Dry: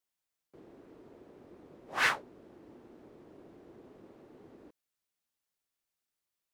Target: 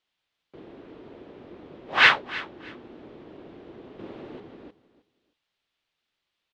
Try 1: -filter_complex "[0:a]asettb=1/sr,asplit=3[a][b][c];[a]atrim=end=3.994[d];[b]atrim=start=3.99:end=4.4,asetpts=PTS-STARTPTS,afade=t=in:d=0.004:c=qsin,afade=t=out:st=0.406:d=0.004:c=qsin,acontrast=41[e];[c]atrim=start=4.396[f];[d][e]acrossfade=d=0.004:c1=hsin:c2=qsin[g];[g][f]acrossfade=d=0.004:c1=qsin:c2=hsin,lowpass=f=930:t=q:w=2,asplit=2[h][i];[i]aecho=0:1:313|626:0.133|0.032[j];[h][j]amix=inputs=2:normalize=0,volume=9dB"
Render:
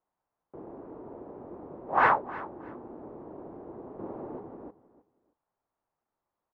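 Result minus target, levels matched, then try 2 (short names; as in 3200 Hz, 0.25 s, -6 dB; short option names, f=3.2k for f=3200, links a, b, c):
4000 Hz band -18.0 dB
-filter_complex "[0:a]asettb=1/sr,asplit=3[a][b][c];[a]atrim=end=3.994[d];[b]atrim=start=3.99:end=4.4,asetpts=PTS-STARTPTS,afade=t=in:d=0.004:c=qsin,afade=t=out:st=0.406:d=0.004:c=qsin,acontrast=41[e];[c]atrim=start=4.396[f];[d][e]acrossfade=d=0.004:c1=hsin:c2=qsin[g];[g][f]acrossfade=d=0.004:c1=qsin:c2=hsin,lowpass=f=3.4k:t=q:w=2,asplit=2[h][i];[i]aecho=0:1:313|626:0.133|0.032[j];[h][j]amix=inputs=2:normalize=0,volume=9dB"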